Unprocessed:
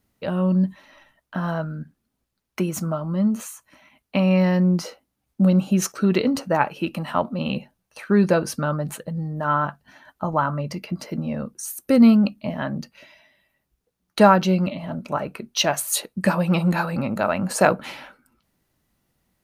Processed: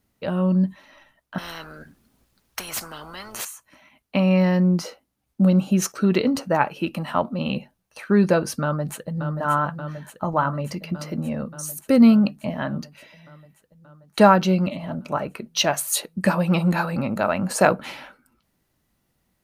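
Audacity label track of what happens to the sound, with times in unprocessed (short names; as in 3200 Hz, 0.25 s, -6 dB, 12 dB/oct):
1.380000	3.450000	spectral compressor 10:1
8.620000	9.390000	echo throw 0.58 s, feedback 75%, level -8 dB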